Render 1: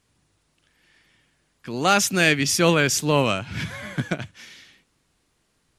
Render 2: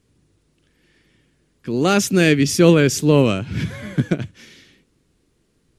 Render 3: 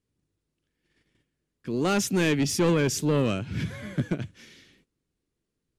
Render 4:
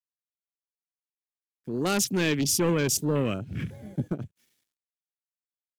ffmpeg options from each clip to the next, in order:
ffmpeg -i in.wav -af "lowshelf=frequency=560:width_type=q:width=1.5:gain=8,volume=-1dB" out.wav
ffmpeg -i in.wav -af "asoftclip=type=tanh:threshold=-10.5dB,agate=range=-12dB:threshold=-57dB:ratio=16:detection=peak,volume=-6dB" out.wav
ffmpeg -i in.wav -af "aeval=exprs='sgn(val(0))*max(abs(val(0))-0.00224,0)':channel_layout=same,afwtdn=0.0126,aemphasis=mode=production:type=50fm,volume=-1.5dB" out.wav

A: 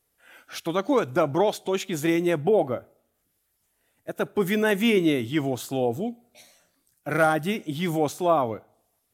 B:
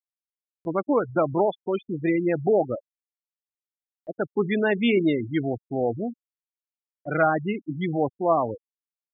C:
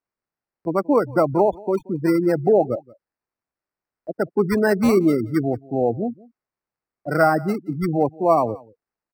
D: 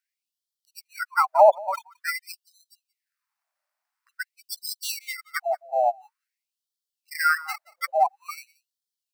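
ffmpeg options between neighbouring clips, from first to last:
ffmpeg -i in.wav -af "afftfilt=real='re*gte(hypot(re,im),0.0891)':imag='im*gte(hypot(re,im),0.0891)':win_size=1024:overlap=0.75,acompressor=mode=upward:threshold=-41dB:ratio=2.5" out.wav
ffmpeg -i in.wav -filter_complex "[0:a]acrossover=split=110|1900[link_01][link_02][link_03];[link_03]acrusher=samples=13:mix=1:aa=0.000001[link_04];[link_01][link_02][link_04]amix=inputs=3:normalize=0,aecho=1:1:178:0.0708,volume=4.5dB" out.wav
ffmpeg -i in.wav -af "afftfilt=real='re*gte(b*sr/1024,530*pow(3100/530,0.5+0.5*sin(2*PI*0.48*pts/sr)))':imag='im*gte(b*sr/1024,530*pow(3100/530,0.5+0.5*sin(2*PI*0.48*pts/sr)))':win_size=1024:overlap=0.75,volume=6.5dB" out.wav

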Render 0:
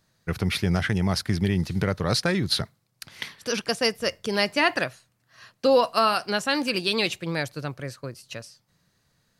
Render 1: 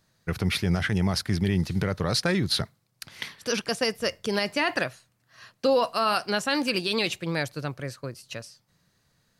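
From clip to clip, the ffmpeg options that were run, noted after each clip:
ffmpeg -i in.wav -af "alimiter=limit=-14dB:level=0:latency=1:release=23" out.wav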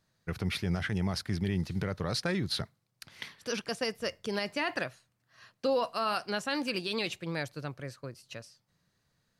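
ffmpeg -i in.wav -af "highshelf=frequency=6800:gain=-4,volume=-6.5dB" out.wav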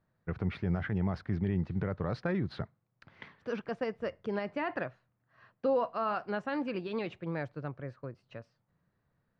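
ffmpeg -i in.wav -af "lowpass=1500" out.wav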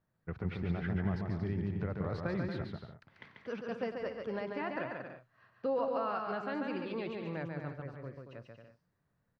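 ffmpeg -i in.wav -af "aecho=1:1:140|231|290.2|328.6|353.6:0.631|0.398|0.251|0.158|0.1,volume=-4.5dB" out.wav

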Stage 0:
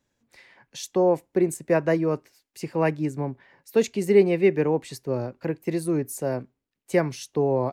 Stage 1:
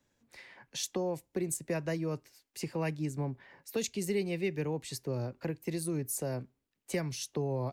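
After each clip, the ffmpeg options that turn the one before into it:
ffmpeg -i in.wav -filter_complex "[0:a]acrossover=split=130|3000[link_01][link_02][link_03];[link_02]acompressor=threshold=-37dB:ratio=3[link_04];[link_01][link_04][link_03]amix=inputs=3:normalize=0" out.wav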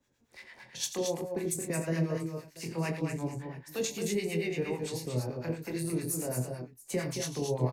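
ffmpeg -i in.wav -filter_complex "[0:a]asplit=2[link_01][link_02];[link_02]adelay=24,volume=-5dB[link_03];[link_01][link_03]amix=inputs=2:normalize=0,aecho=1:1:48|86|222|259|686:0.355|0.376|0.473|0.355|0.106,acrossover=split=840[link_04][link_05];[link_04]aeval=exprs='val(0)*(1-0.7/2+0.7/2*cos(2*PI*8.9*n/s))':channel_layout=same[link_06];[link_05]aeval=exprs='val(0)*(1-0.7/2-0.7/2*cos(2*PI*8.9*n/s))':channel_layout=same[link_07];[link_06][link_07]amix=inputs=2:normalize=0,volume=2dB" out.wav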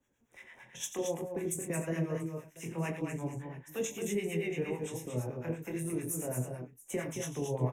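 ffmpeg -i in.wav -af "flanger=delay=2.4:depth=6.1:regen=-70:speed=1:shape=triangular,asuperstop=centerf=4500:order=4:qfactor=1.9,volume=2dB" out.wav

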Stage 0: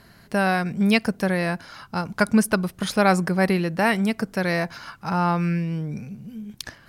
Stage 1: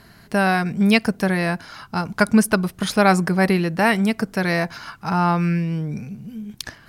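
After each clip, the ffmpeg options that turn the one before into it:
ffmpeg -i in.wav -af "bandreject=frequency=540:width=12,volume=3dB" out.wav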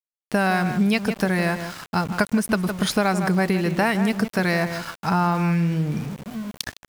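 ffmpeg -i in.wav -filter_complex "[0:a]asplit=2[link_01][link_02];[link_02]adelay=159,lowpass=frequency=2300:poles=1,volume=-11dB,asplit=2[link_03][link_04];[link_04]adelay=159,lowpass=frequency=2300:poles=1,volume=0.18[link_05];[link_01][link_03][link_05]amix=inputs=3:normalize=0,acompressor=threshold=-18dB:ratio=16,aeval=exprs='val(0)*gte(abs(val(0)),0.0158)':channel_layout=same,volume=2dB" out.wav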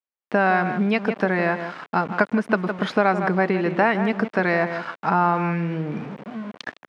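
ffmpeg -i in.wav -af "highpass=260,lowpass=2100,volume=3.5dB" out.wav

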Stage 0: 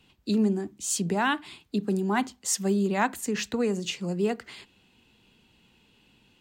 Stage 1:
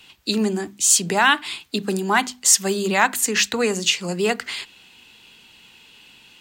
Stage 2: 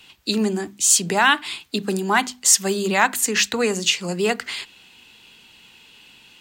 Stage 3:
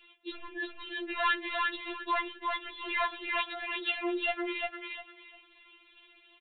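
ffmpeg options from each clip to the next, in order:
ffmpeg -i in.wav -filter_complex "[0:a]tiltshelf=frequency=730:gain=-7.5,bandreject=frequency=50:width_type=h:width=6,bandreject=frequency=100:width_type=h:width=6,bandreject=frequency=150:width_type=h:width=6,bandreject=frequency=200:width_type=h:width=6,bandreject=frequency=250:width_type=h:width=6,asplit=2[link_01][link_02];[link_02]alimiter=limit=-18dB:level=0:latency=1:release=205,volume=1dB[link_03];[link_01][link_03]amix=inputs=2:normalize=0,volume=2.5dB" out.wav
ffmpeg -i in.wav -af anull out.wav
ffmpeg -i in.wav -af "aresample=8000,asoftclip=type=tanh:threshold=-14.5dB,aresample=44100,aecho=1:1:351|702|1053:0.708|0.163|0.0375,afftfilt=real='re*4*eq(mod(b,16),0)':imag='im*4*eq(mod(b,16),0)':win_size=2048:overlap=0.75,volume=-5.5dB" out.wav

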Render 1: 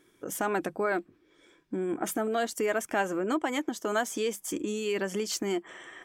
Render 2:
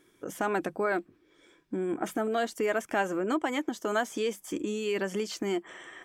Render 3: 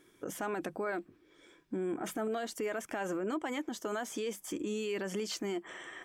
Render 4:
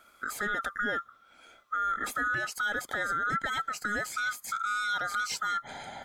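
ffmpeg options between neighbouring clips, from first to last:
ffmpeg -i in.wav -filter_complex "[0:a]acrossover=split=4200[link_01][link_02];[link_02]acompressor=threshold=-43dB:ratio=4:attack=1:release=60[link_03];[link_01][link_03]amix=inputs=2:normalize=0" out.wav
ffmpeg -i in.wav -af "alimiter=level_in=3.5dB:limit=-24dB:level=0:latency=1:release=60,volume=-3.5dB" out.wav
ffmpeg -i in.wav -af "afftfilt=real='real(if(lt(b,960),b+48*(1-2*mod(floor(b/48),2)),b),0)':imag='imag(if(lt(b,960),b+48*(1-2*mod(floor(b/48),2)),b),0)':win_size=2048:overlap=0.75,volume=4.5dB" out.wav

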